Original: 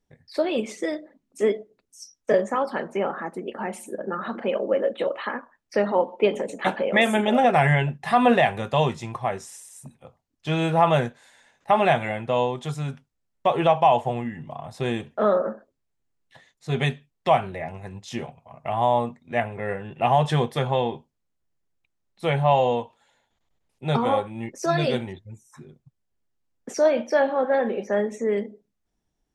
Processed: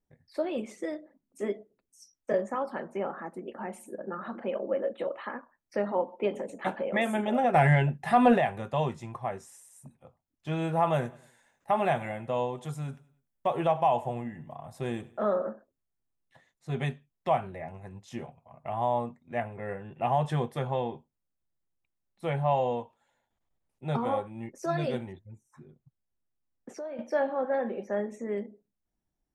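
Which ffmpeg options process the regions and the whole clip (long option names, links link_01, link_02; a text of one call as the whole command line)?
ffmpeg -i in.wav -filter_complex "[0:a]asettb=1/sr,asplit=3[link_01][link_02][link_03];[link_01]atrim=end=7.544[link_04];[link_02]atrim=start=7.54:end=8.38,asetpts=PTS-STARTPTS,afade=type=in:duration=0.004:curve=qsin,afade=type=out:start_time=0.836:duration=0.004:curve=qsin,acontrast=37,bandreject=frequency=1100:width=6.2[link_05];[link_03]atrim=start=8.376[link_06];[link_04][link_05]acrossfade=duration=0.004:curve1=hsin:curve2=qsin[link_07];[link_07][link_06]acrossfade=duration=0.004:curve1=qsin:curve2=hsin,asettb=1/sr,asplit=3[link_08][link_09][link_10];[link_08]atrim=end=10.734[link_11];[link_09]atrim=start=10.73:end=15.5,asetpts=PTS-STARTPTS,afade=type=in:duration=0.004:curve=qsin,afade=type=out:start_time=4.766:duration=0.004:curve=qsin,highshelf=frequency=8900:gain=10,aecho=1:1:99|198|297:0.0944|0.0368|0.0144,atrim=end_sample=210357[link_12];[link_10]atrim=start=15.496[link_13];[link_11][link_12]acrossfade=duration=0.004:curve1=hsin:curve2=qsin[link_14];[link_14][link_13]acrossfade=duration=0.004:curve1=qsin:curve2=hsin,asettb=1/sr,asplit=3[link_15][link_16][link_17];[link_15]atrim=end=25.284[link_18];[link_16]atrim=start=25.28:end=26.99,asetpts=PTS-STARTPTS,afade=type=in:duration=0.004:curve=qsin,afade=type=out:start_time=1.706:duration=0.004:curve=qsin,highshelf=frequency=6300:gain=-9.5,acompressor=threshold=-29dB:ratio=5:attack=3.2:release=140:knee=1:detection=peak[link_19];[link_17]atrim=start=26.986[link_20];[link_18][link_19]acrossfade=duration=0.004:curve1=hsin:curve2=qsin[link_21];[link_21][link_20]acrossfade=duration=0.004:curve1=qsin:curve2=hsin,equalizer=frequency=4100:width=0.67:gain=-7.5,bandreject=frequency=440:width=13,volume=-6.5dB" out.wav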